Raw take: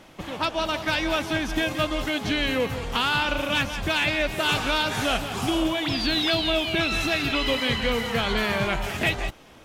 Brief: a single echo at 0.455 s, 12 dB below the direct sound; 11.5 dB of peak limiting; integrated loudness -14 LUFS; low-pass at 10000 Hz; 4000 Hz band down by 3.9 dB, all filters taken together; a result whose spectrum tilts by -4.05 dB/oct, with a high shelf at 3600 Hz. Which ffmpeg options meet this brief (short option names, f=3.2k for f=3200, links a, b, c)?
-af "lowpass=10k,highshelf=f=3.6k:g=6,equalizer=f=4k:t=o:g=-9,alimiter=limit=-23dB:level=0:latency=1,aecho=1:1:455:0.251,volume=17.5dB"